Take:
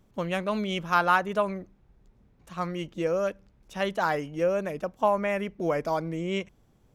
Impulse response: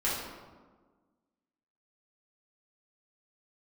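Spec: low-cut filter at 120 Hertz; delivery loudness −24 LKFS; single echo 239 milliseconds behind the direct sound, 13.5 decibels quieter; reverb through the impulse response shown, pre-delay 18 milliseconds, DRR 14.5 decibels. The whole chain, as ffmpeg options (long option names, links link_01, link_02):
-filter_complex "[0:a]highpass=120,aecho=1:1:239:0.211,asplit=2[link_01][link_02];[1:a]atrim=start_sample=2205,adelay=18[link_03];[link_02][link_03]afir=irnorm=-1:irlink=0,volume=-23.5dB[link_04];[link_01][link_04]amix=inputs=2:normalize=0,volume=4dB"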